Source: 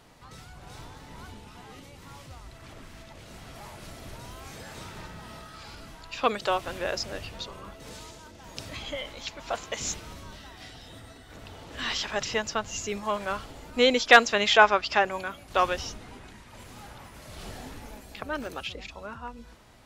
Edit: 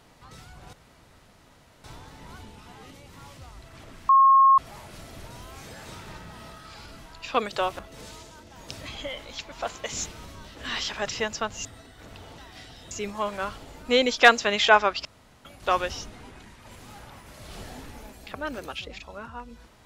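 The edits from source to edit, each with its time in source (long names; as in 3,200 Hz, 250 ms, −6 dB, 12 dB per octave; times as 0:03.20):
0:00.73: splice in room tone 1.11 s
0:02.98–0:03.47: beep over 1,080 Hz −12.5 dBFS
0:06.68–0:07.67: remove
0:10.43–0:10.96: swap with 0:11.69–0:12.79
0:14.93–0:15.33: fill with room tone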